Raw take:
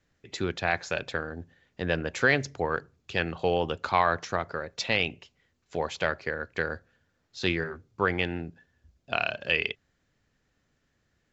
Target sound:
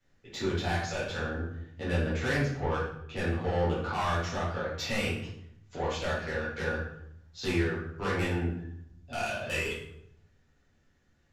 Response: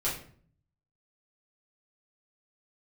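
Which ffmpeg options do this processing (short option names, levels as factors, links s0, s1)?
-filter_complex "[0:a]asettb=1/sr,asplit=3[s0][s1][s2];[s0]atrim=end=2.064[s3];[s1]atrim=start=2.06:end=3.98,asetpts=PTS-STARTPTS,afade=t=in:d=0.004:c=qsin,afade=t=out:st=1.916:d=0.004:c=qsin,lowpass=f=2300:p=1[s4];[s2]atrim=start=3.976[s5];[s3][s4]acrossfade=d=0.004:c1=hsin:c2=qsin[s6];[s6][s5]acrossfade=d=0.004:c1=qsin:c2=hsin,acrossover=split=200[s7][s8];[s8]asoftclip=type=tanh:threshold=0.0473[s9];[s7][s9]amix=inputs=2:normalize=0[s10];[1:a]atrim=start_sample=2205,asetrate=27342,aresample=44100[s11];[s10][s11]afir=irnorm=-1:irlink=0,volume=0.376"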